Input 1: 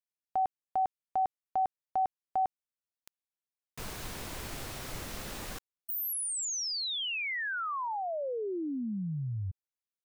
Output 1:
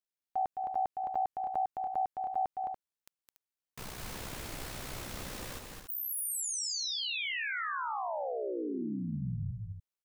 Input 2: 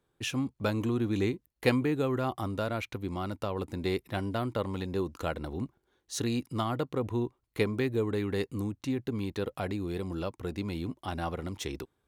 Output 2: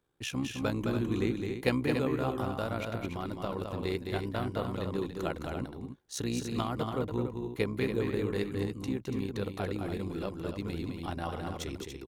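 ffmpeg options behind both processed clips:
-af "tremolo=f=63:d=0.621,aecho=1:1:212.8|285.7:0.562|0.398"

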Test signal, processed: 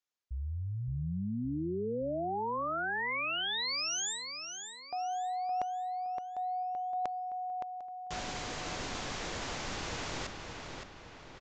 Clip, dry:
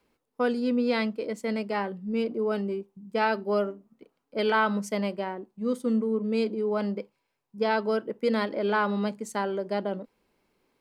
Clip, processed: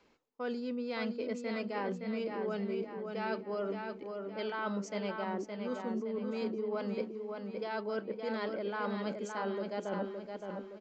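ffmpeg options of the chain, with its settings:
-filter_complex "[0:a]lowshelf=f=200:g=-6,areverse,acompressor=threshold=0.0112:ratio=8,areverse,asplit=2[s0][s1];[s1]adelay=567,lowpass=f=5000:p=1,volume=0.562,asplit=2[s2][s3];[s3]adelay=567,lowpass=f=5000:p=1,volume=0.48,asplit=2[s4][s5];[s5]adelay=567,lowpass=f=5000:p=1,volume=0.48,asplit=2[s6][s7];[s7]adelay=567,lowpass=f=5000:p=1,volume=0.48,asplit=2[s8][s9];[s9]adelay=567,lowpass=f=5000:p=1,volume=0.48,asplit=2[s10][s11];[s11]adelay=567,lowpass=f=5000:p=1,volume=0.48[s12];[s0][s2][s4][s6][s8][s10][s12]amix=inputs=7:normalize=0,aresample=16000,aresample=44100,volume=1.68"

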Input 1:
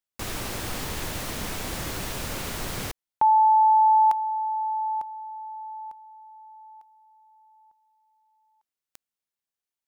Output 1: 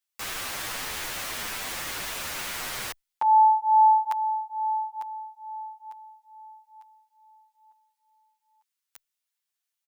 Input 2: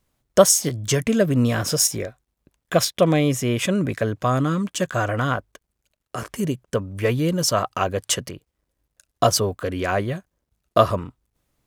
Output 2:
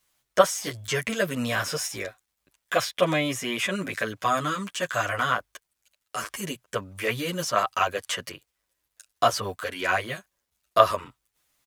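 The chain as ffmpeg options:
-filter_complex "[0:a]tiltshelf=f=640:g=-10,acrossover=split=2600[s0][s1];[s1]acompressor=threshold=0.0398:ratio=4:attack=1:release=60[s2];[s0][s2]amix=inputs=2:normalize=0,asplit=2[s3][s4];[s4]adelay=8.9,afreqshift=-2.3[s5];[s3][s5]amix=inputs=2:normalize=1,volume=0.891"

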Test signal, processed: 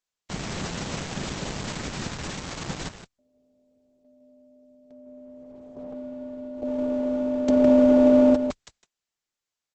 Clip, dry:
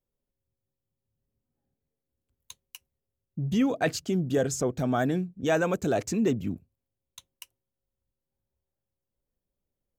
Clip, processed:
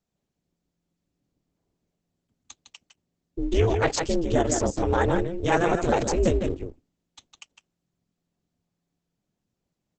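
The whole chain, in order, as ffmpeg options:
-filter_complex "[0:a]asplit=2[s0][s1];[s1]adelay=157.4,volume=0.501,highshelf=f=4000:g=-3.54[s2];[s0][s2]amix=inputs=2:normalize=0,aeval=exprs='val(0)*sin(2*PI*170*n/s)':c=same,volume=2" -ar 48000 -c:a libopus -b:a 10k

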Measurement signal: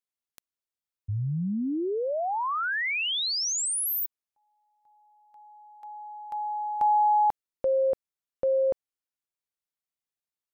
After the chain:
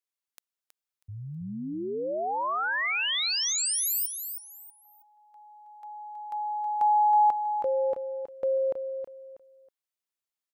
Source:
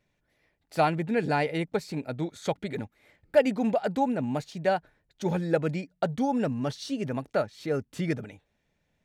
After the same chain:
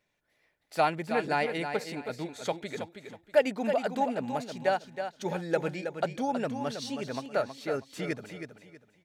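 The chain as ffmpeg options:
-filter_complex "[0:a]lowshelf=f=270:g=-12,asplit=2[s0][s1];[s1]aecho=0:1:321|642|963:0.398|0.107|0.029[s2];[s0][s2]amix=inputs=2:normalize=0"

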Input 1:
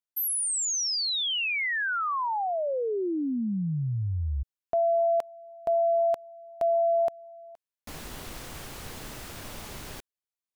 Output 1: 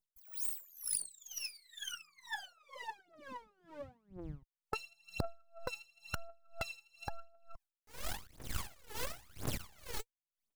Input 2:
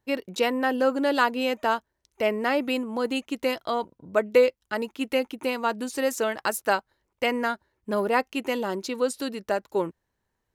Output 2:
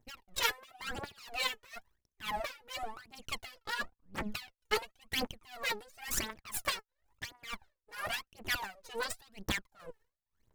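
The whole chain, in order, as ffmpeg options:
-filter_complex "[0:a]aeval=exprs='max(val(0),0)':c=same,afftfilt=real='re*lt(hypot(re,im),0.0891)':imag='im*lt(hypot(re,im),0.0891)':win_size=1024:overlap=0.75,asplit=2[s0][s1];[s1]acrusher=bits=4:mix=0:aa=0.000001,volume=0.282[s2];[s0][s2]amix=inputs=2:normalize=0,aphaser=in_gain=1:out_gain=1:delay=2.4:decay=0.77:speed=0.95:type=triangular,aeval=exprs='val(0)*pow(10,-26*(0.5-0.5*cos(2*PI*2.1*n/s))/20)':c=same,volume=1.33"

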